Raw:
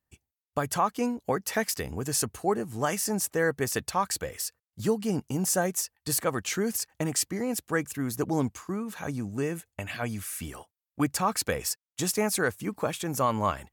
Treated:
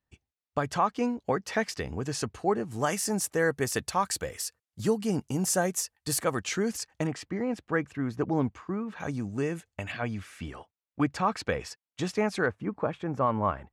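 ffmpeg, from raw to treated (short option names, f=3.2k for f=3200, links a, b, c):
-af "asetnsamples=n=441:p=0,asendcmd='2.71 lowpass f 11000;6.39 lowpass f 6800;7.07 lowpass f 2600;9 lowpass f 6500;9.92 lowpass f 3500;12.46 lowpass f 1600',lowpass=4.8k"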